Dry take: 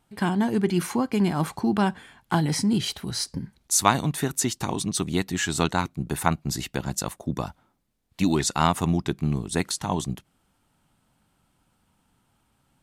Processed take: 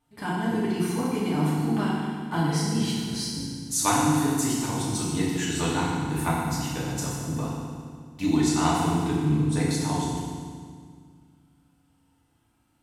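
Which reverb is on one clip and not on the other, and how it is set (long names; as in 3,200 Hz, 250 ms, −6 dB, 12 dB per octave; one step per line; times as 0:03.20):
feedback delay network reverb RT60 1.9 s, low-frequency decay 1.4×, high-frequency decay 0.9×, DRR −7.5 dB
level −10 dB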